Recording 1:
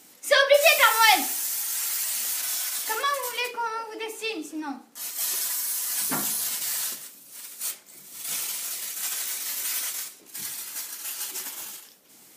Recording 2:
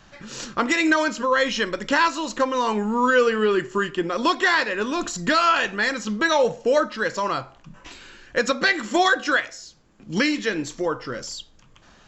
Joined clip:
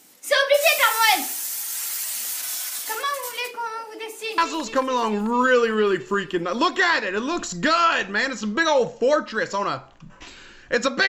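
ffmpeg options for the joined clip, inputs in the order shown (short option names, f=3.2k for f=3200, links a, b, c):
-filter_complex "[0:a]apad=whole_dur=11.08,atrim=end=11.08,atrim=end=4.382[a];[1:a]atrim=start=2.018:end=8.72[b];[a][b]acrossfade=d=0.004:c1=hsin:c2=hsin,asplit=2[c][d];[d]afade=t=in:st=3.98:d=0.01,afade=t=out:st=4.38:d=0.01,aecho=0:1:220|440|660|880|1100|1320|1540|1760|1980|2200|2420|2640:0.334965|0.267972|0.214378|0.171502|0.137202|0.109761|0.0878092|0.0702473|0.0561979|0.0449583|0.0359666|0.0287733[e];[c][e]amix=inputs=2:normalize=0"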